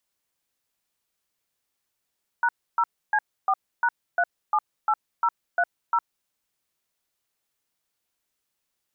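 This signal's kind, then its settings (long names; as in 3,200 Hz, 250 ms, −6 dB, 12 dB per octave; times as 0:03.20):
touch tones "#0C4#378030", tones 58 ms, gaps 292 ms, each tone −21 dBFS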